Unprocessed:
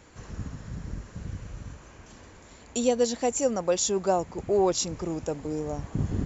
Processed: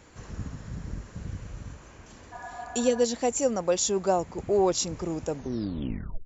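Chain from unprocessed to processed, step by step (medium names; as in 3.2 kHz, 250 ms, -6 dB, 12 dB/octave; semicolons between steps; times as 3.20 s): tape stop on the ending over 0.92 s; spectral replace 2.35–2.99 s, 570–1800 Hz after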